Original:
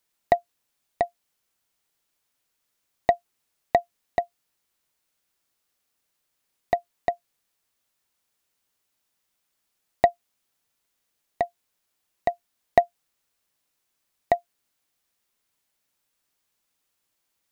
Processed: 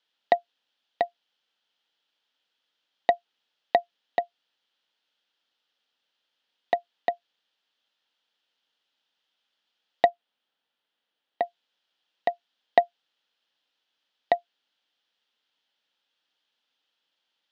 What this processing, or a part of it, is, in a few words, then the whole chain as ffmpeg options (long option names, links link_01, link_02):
phone earpiece: -filter_complex "[0:a]asettb=1/sr,asplit=3[link_01][link_02][link_03];[link_01]atrim=end=10.094[link_04];[link_02]atrim=start=10.09:end=11.43,asetpts=PTS-STARTPTS,afade=type=in:duration=0.004:curve=qsin,afade=type=out:start_time=1.336:duration=0.004:curve=qsin,highshelf=frequency=3300:gain=-10[link_05];[link_03]atrim=start=11.426[link_06];[link_04][link_05]acrossfade=duration=0.004:curve1=hsin:curve2=qsin[link_07];[link_07][link_06]acrossfade=duration=0.004:curve1=qsin:curve2=hsin,highpass=340,equalizer=frequency=380:width_type=q:width=4:gain=-8,equalizer=frequency=650:width_type=q:width=4:gain=-5,equalizer=frequency=1100:width_type=q:width=4:gain=-7,equalizer=frequency=2200:width_type=q:width=4:gain=-6,equalizer=frequency=3200:width_type=q:width=4:gain=8,lowpass=frequency=4400:width=0.5412,lowpass=frequency=4400:width=1.3066,volume=3.5dB"